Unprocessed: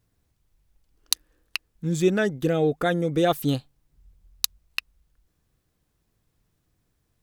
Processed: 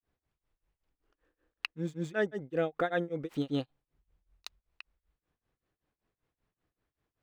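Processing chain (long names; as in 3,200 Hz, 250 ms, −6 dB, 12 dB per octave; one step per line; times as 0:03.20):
running median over 3 samples
bass and treble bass −9 dB, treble −14 dB
granular cloud 222 ms, grains 5.2 per second, pitch spread up and down by 0 semitones
level −2.5 dB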